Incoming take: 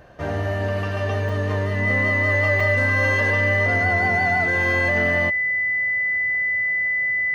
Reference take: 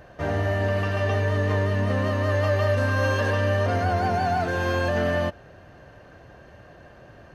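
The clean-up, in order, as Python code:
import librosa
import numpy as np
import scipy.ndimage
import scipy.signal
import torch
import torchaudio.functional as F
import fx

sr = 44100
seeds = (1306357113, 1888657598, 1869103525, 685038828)

y = fx.notch(x, sr, hz=2000.0, q=30.0)
y = fx.fix_interpolate(y, sr, at_s=(1.29, 2.6), length_ms=3.3)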